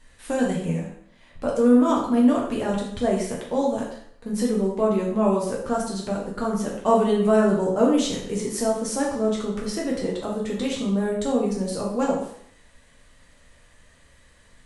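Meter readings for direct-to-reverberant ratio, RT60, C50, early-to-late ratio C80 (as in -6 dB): -3.5 dB, 0.65 s, 3.5 dB, 7.0 dB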